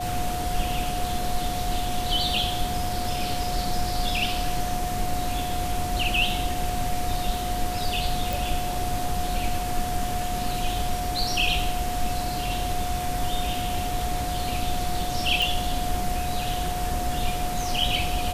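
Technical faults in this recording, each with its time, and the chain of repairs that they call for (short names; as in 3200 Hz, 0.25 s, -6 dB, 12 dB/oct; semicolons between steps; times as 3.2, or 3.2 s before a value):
tone 720 Hz -29 dBFS
8.33 pop
15.42 pop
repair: de-click; notch 720 Hz, Q 30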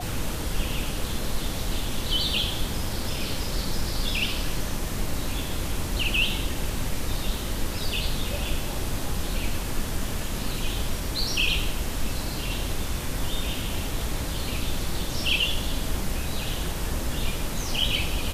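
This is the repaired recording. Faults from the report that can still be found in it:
none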